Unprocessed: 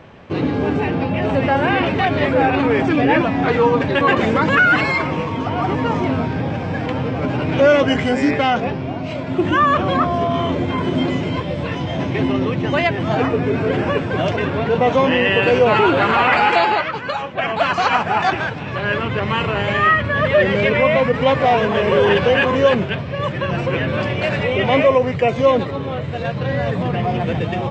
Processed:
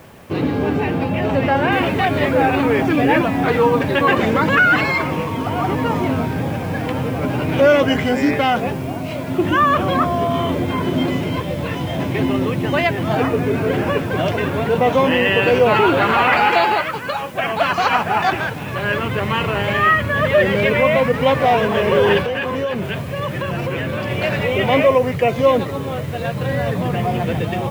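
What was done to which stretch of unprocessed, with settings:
0:01.72: noise floor change −55 dB −47 dB
0:22.21–0:24.11: downward compressor, threshold −18 dBFS

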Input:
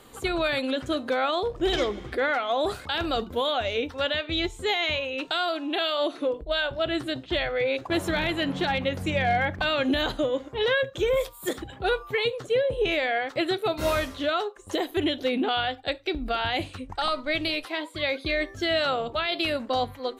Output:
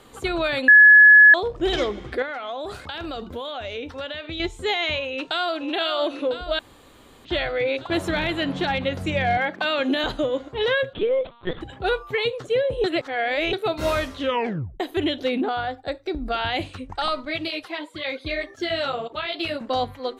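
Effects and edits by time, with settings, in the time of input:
0:00.68–0:01.34: beep over 1,700 Hz −8.5 dBFS
0:02.22–0:04.40: downward compressor 5 to 1, threshold −30 dBFS
0:05.10–0:05.69: delay throw 500 ms, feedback 75%, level −9 dB
0:06.59–0:07.25: fill with room tone
0:09.37–0:10.04: high-pass filter 200 Hz 24 dB per octave
0:10.93–0:11.61: linear-prediction vocoder at 8 kHz pitch kept
0:12.84–0:13.53: reverse
0:14.21: tape stop 0.59 s
0:15.41–0:16.32: parametric band 2,900 Hz −13.5 dB 0.85 octaves
0:17.25–0:19.61: through-zero flanger with one copy inverted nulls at 1.9 Hz, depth 6.2 ms
whole clip: high-shelf EQ 11,000 Hz −10 dB; level +2 dB

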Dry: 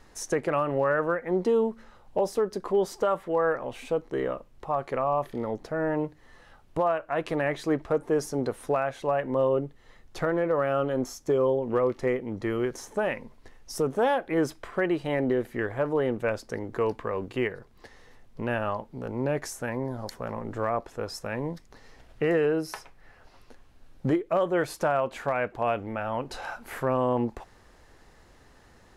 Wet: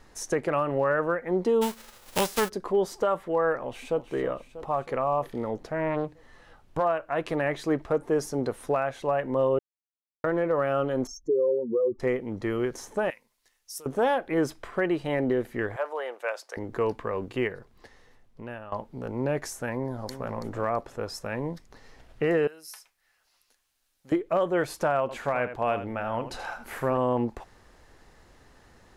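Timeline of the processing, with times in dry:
0:01.61–0:02.48: spectral envelope flattened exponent 0.3
0:03.62–0:04.04: delay throw 320 ms, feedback 65%, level −11 dB
0:05.63–0:06.85: highs frequency-modulated by the lows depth 0.38 ms
0:09.59–0:10.24: silence
0:11.07–0:12.00: expanding power law on the bin magnitudes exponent 2.6
0:13.10–0:13.86: first-order pre-emphasis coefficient 0.97
0:15.76–0:16.57: high-pass filter 570 Hz 24 dB per octave
0:17.53–0:18.72: fade out, to −15.5 dB
0:19.75–0:20.32: delay throw 330 ms, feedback 25%, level −10.5 dB
0:22.47–0:24.12: first-order pre-emphasis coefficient 0.97
0:25.01–0:26.98: single-tap delay 80 ms −11 dB

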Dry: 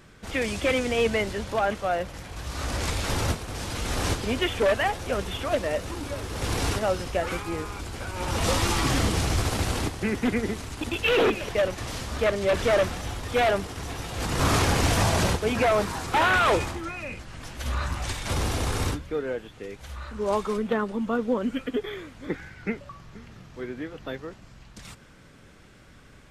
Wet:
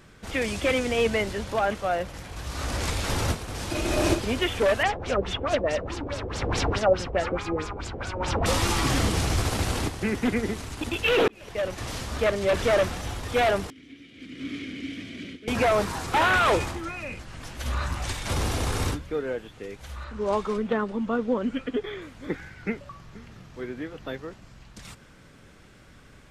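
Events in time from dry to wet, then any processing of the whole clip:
0:03.71–0:04.19: hollow resonant body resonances 340/610/2,500 Hz, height 17 dB, ringing for 85 ms
0:04.83–0:08.46: auto-filter low-pass sine 4.7 Hz 480–7,300 Hz
0:11.28–0:11.84: fade in
0:13.70–0:15.48: formant filter i
0:20.04–0:22.02: high-frequency loss of the air 54 metres

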